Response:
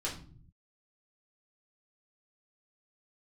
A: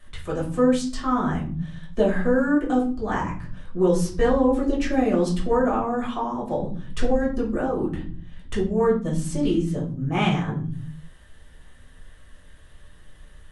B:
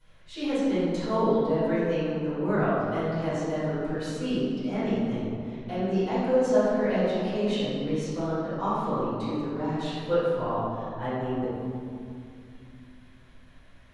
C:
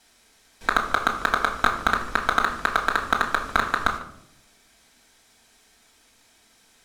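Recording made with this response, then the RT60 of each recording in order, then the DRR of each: A; 0.50 s, 2.5 s, 0.75 s; -5.5 dB, -15.5 dB, -1.0 dB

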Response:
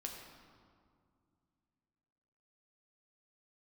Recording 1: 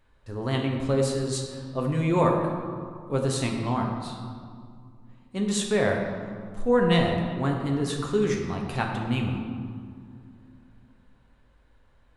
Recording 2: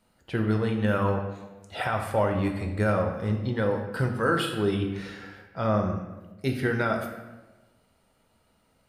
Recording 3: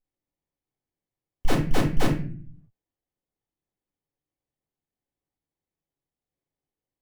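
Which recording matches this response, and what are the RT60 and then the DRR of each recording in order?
1; 2.2 s, 1.2 s, no single decay rate; 0.5 dB, 2.5 dB, -2.0 dB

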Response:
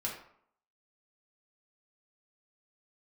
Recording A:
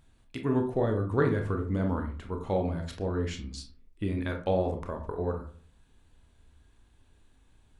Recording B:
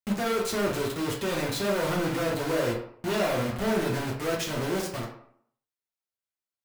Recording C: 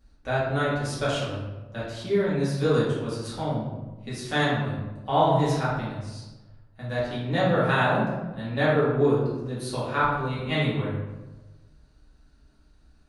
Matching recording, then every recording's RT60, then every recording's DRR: B; 0.45 s, 0.65 s, 1.2 s; 3.5 dB, -4.0 dB, -10.0 dB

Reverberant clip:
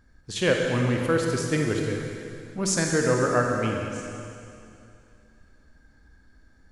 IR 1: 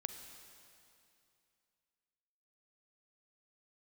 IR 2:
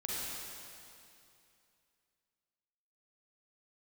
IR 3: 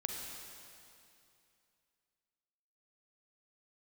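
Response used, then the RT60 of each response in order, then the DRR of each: 3; 2.6 s, 2.6 s, 2.6 s; 7.0 dB, -6.5 dB, 1.0 dB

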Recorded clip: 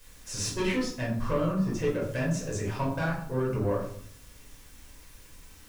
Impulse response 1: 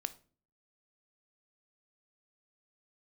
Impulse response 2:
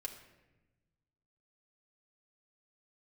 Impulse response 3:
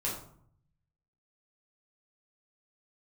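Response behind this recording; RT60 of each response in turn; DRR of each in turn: 3; 0.40 s, 1.1 s, 0.60 s; 12.0 dB, -1.0 dB, -6.0 dB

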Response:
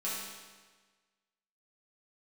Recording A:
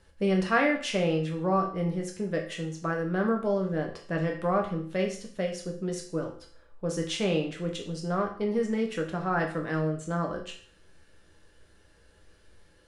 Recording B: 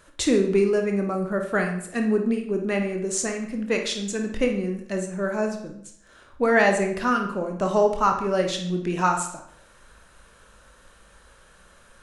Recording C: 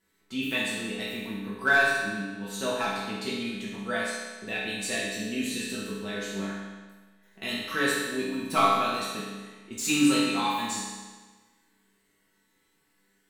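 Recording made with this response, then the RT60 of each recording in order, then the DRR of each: C; 0.50 s, 0.65 s, 1.4 s; 0.5 dB, 3.0 dB, -9.0 dB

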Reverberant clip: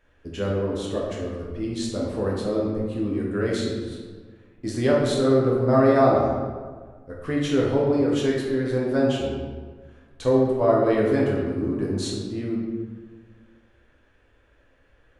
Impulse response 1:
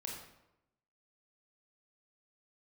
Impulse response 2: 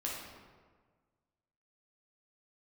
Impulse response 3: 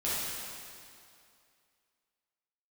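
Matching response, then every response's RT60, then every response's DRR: 2; 0.90 s, 1.5 s, 2.4 s; -1.5 dB, -4.0 dB, -10.5 dB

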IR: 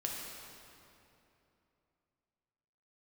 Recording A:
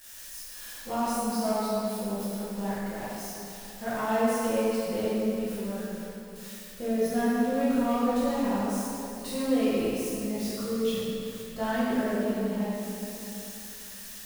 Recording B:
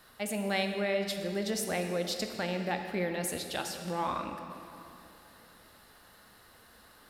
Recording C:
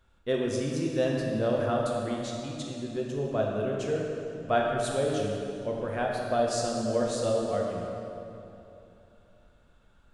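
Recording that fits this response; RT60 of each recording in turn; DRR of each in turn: C; 2.9 s, 2.9 s, 2.9 s; -12.0 dB, 4.5 dB, -2.0 dB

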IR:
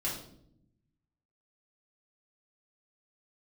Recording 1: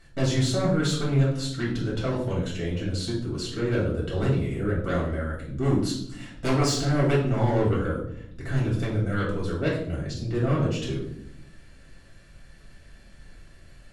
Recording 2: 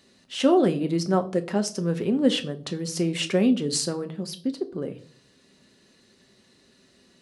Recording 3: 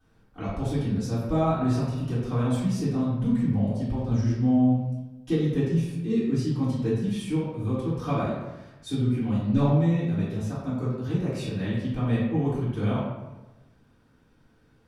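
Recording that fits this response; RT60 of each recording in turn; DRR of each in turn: 1; 0.70 s, 0.50 s, 1.1 s; -6.0 dB, 7.0 dB, -12.0 dB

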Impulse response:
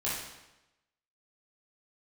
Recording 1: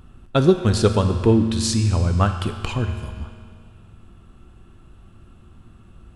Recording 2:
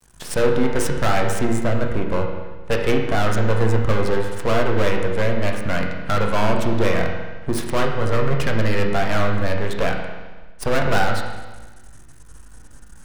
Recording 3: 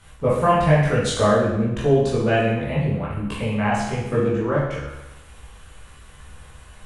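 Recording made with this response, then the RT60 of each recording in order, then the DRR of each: 3; 2.1 s, 1.3 s, 0.95 s; 6.0 dB, 0.5 dB, -8.5 dB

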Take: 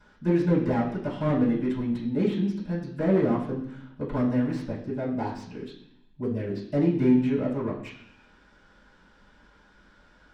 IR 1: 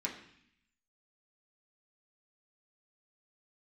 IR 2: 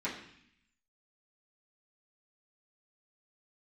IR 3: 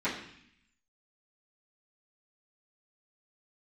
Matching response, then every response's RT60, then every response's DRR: 3; 0.65 s, 0.65 s, 0.65 s; -3.5 dB, -11.0 dB, -15.0 dB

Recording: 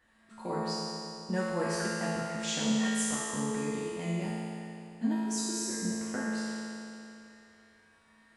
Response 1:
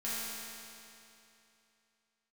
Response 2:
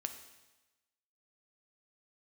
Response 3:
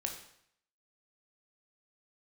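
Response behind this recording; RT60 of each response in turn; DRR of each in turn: 1; 2.8 s, 1.1 s, 0.65 s; -11.0 dB, 6.5 dB, 2.5 dB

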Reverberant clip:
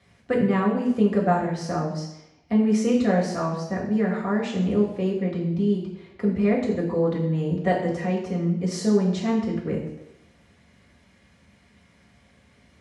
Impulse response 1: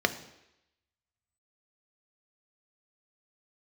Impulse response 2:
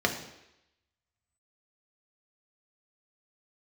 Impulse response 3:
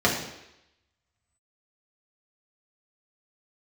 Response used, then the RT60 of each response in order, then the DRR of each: 3; 0.85 s, 0.85 s, 0.85 s; 8.5 dB, 2.5 dB, -4.0 dB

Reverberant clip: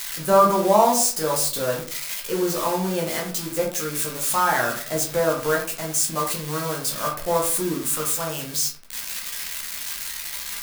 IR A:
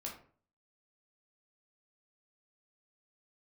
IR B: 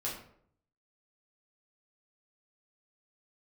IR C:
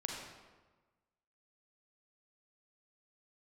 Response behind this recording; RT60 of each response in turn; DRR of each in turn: A; 0.45 s, 0.65 s, 1.3 s; -2.0 dB, -6.0 dB, -1.0 dB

